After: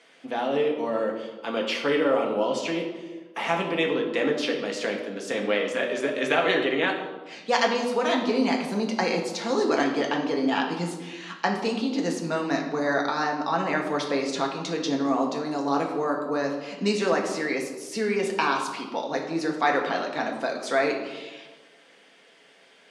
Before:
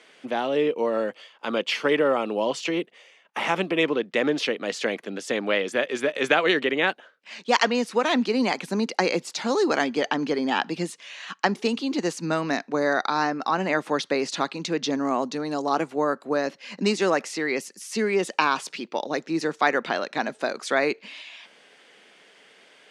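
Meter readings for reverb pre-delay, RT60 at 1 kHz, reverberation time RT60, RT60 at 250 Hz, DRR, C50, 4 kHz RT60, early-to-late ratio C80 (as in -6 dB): 4 ms, 1.2 s, 1.3 s, 1.4 s, 0.0 dB, 5.5 dB, 0.80 s, 7.5 dB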